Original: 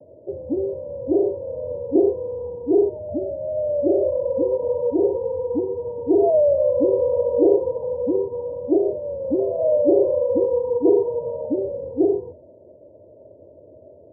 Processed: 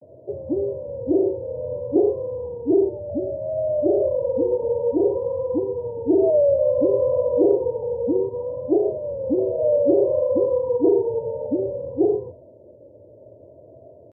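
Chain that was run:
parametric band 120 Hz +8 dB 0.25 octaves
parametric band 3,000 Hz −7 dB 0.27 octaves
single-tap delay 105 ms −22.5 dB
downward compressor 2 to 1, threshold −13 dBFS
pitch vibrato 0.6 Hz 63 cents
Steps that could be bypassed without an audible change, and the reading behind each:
parametric band 3,000 Hz: nothing at its input above 1,000 Hz

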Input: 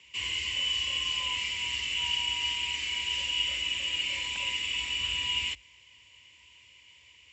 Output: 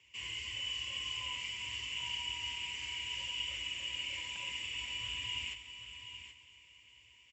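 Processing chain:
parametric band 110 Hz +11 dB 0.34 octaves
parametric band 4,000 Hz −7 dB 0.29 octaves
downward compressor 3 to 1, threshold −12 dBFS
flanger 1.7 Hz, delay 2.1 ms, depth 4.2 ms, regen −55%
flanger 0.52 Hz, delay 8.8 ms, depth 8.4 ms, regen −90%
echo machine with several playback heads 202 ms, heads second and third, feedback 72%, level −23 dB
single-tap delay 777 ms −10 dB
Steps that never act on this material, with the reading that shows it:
downward compressor, threshold −12 dBFS: peak of its input −19.0 dBFS

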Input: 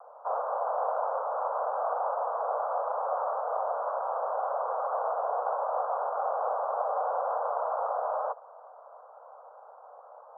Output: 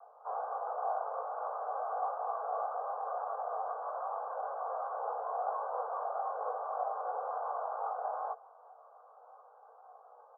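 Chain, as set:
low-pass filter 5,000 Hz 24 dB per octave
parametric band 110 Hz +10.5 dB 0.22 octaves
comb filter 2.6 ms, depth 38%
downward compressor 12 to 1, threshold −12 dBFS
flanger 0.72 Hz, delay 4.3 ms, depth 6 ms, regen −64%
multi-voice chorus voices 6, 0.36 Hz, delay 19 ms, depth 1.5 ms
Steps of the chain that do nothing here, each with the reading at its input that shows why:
low-pass filter 5,000 Hz: nothing at its input above 1,600 Hz
parametric band 110 Hz: nothing at its input below 400 Hz
downward compressor, threshold −12 dBFS: peak of its input −17.0 dBFS

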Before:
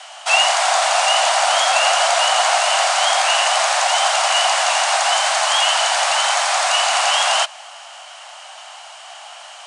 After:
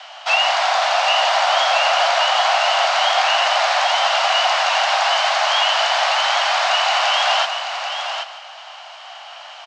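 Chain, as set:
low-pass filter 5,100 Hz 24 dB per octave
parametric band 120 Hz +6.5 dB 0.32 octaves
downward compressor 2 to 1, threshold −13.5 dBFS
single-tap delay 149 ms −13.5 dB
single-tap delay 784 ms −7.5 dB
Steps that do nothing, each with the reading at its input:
parametric band 120 Hz: nothing at its input below 510 Hz

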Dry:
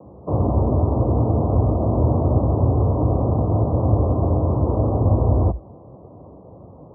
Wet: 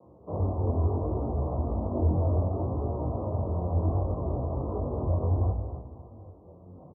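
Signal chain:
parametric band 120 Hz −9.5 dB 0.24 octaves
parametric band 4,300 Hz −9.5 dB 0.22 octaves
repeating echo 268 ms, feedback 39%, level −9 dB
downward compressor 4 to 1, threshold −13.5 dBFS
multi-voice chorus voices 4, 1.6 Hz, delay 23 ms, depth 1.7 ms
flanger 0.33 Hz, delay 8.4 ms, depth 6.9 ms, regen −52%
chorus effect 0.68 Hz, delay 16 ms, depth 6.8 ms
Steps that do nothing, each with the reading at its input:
parametric band 4,300 Hz: nothing at its input above 1,100 Hz

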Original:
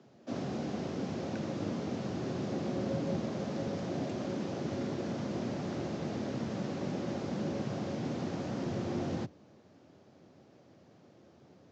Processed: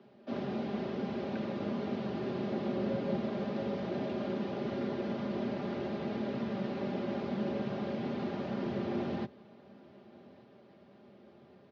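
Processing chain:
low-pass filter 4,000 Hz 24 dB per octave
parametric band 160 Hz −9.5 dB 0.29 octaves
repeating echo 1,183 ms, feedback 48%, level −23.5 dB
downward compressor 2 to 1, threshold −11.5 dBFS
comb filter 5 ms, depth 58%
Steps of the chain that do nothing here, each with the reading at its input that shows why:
downward compressor, threshold −11.5 dBFS: peak of its input −22.0 dBFS

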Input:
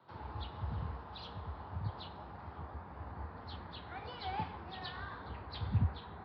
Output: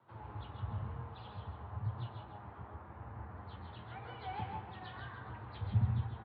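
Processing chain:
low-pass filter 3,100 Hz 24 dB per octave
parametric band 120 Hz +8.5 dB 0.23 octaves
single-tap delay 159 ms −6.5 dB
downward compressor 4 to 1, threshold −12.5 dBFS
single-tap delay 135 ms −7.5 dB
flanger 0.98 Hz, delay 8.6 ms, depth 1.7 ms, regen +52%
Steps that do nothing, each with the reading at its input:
downward compressor, threshold −12.5 dBFS: peak of its input −18.5 dBFS

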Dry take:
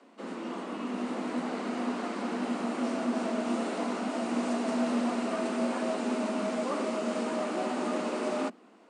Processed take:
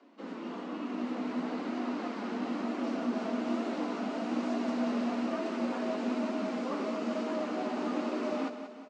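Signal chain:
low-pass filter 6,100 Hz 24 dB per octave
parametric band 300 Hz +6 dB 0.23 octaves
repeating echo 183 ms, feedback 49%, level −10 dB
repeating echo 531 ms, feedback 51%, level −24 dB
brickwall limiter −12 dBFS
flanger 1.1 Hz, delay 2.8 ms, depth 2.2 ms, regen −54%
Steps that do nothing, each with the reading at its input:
brickwall limiter −12 dBFS: peak of its input −17.0 dBFS

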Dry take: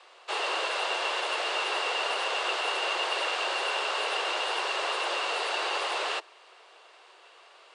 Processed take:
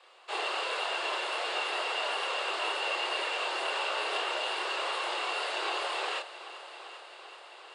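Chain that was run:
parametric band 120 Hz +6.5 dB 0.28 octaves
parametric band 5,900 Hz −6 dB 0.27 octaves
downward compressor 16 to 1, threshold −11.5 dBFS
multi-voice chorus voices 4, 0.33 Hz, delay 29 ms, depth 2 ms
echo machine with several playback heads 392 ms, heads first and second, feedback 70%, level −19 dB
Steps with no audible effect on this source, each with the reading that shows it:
parametric band 120 Hz: nothing at its input below 290 Hz
downward compressor, threshold −11.5 dBFS: peak of its input −16.0 dBFS

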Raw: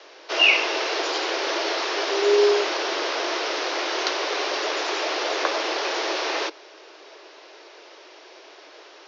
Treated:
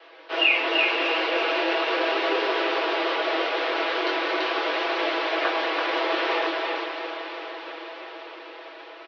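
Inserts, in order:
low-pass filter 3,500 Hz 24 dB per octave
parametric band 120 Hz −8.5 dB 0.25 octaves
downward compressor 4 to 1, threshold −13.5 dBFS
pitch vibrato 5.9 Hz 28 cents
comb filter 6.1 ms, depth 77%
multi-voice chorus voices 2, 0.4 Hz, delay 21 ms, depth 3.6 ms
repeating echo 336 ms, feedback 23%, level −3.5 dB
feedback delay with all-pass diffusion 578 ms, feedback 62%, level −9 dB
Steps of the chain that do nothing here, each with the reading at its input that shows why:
parametric band 120 Hz: nothing at its input below 270 Hz

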